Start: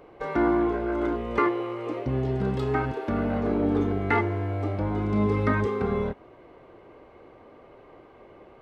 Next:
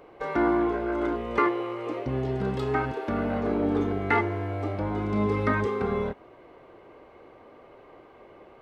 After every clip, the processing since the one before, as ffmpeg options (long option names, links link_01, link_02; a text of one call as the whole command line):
ffmpeg -i in.wav -af "lowshelf=frequency=280:gain=-5,volume=1dB" out.wav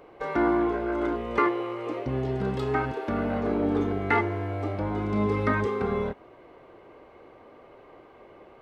ffmpeg -i in.wav -af anull out.wav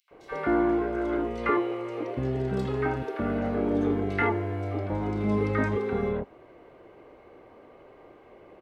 ffmpeg -i in.wav -filter_complex "[0:a]acrossover=split=1100|3700[link_01][link_02][link_03];[link_02]adelay=80[link_04];[link_01]adelay=110[link_05];[link_05][link_04][link_03]amix=inputs=3:normalize=0" out.wav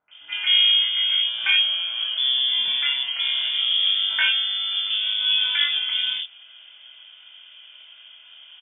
ffmpeg -i in.wav -filter_complex "[0:a]asplit=2[link_01][link_02];[link_02]aeval=exprs='clip(val(0),-1,0.0668)':channel_layout=same,volume=-5dB[link_03];[link_01][link_03]amix=inputs=2:normalize=0,asplit=2[link_04][link_05];[link_05]adelay=23,volume=-5.5dB[link_06];[link_04][link_06]amix=inputs=2:normalize=0,lowpass=frequency=3100:width_type=q:width=0.5098,lowpass=frequency=3100:width_type=q:width=0.6013,lowpass=frequency=3100:width_type=q:width=0.9,lowpass=frequency=3100:width_type=q:width=2.563,afreqshift=-3600" out.wav